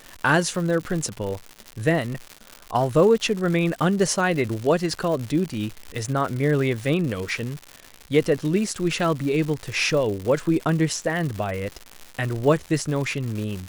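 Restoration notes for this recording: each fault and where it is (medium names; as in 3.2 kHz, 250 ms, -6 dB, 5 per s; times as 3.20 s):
crackle 200 per s -28 dBFS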